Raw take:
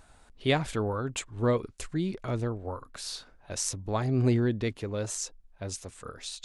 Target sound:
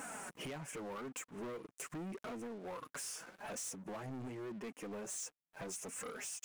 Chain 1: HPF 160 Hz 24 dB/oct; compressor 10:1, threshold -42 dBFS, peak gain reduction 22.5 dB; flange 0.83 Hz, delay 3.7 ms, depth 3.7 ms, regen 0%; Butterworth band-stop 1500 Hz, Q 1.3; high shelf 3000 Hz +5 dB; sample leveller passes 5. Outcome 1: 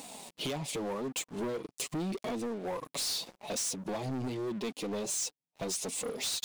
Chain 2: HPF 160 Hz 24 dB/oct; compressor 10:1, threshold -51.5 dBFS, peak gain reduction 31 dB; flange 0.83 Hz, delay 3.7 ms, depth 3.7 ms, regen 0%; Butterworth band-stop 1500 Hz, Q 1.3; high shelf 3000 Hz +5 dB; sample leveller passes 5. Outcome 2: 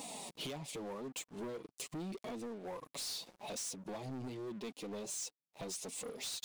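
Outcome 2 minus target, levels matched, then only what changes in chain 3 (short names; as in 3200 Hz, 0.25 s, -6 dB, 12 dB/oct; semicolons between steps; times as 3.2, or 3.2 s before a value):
4000 Hz band +6.5 dB
change: Butterworth band-stop 4000 Hz, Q 1.3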